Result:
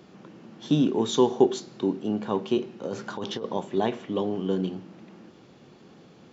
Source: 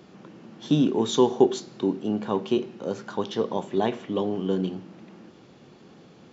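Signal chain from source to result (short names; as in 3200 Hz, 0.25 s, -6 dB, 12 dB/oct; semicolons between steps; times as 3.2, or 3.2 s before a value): 2.84–3.46 negative-ratio compressor -30 dBFS, ratio -1; gain -1 dB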